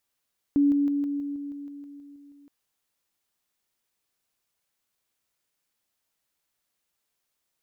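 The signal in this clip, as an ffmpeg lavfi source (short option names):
-f lavfi -i "aevalsrc='pow(10,(-17-3*floor(t/0.16))/20)*sin(2*PI*285*t)':d=1.92:s=44100"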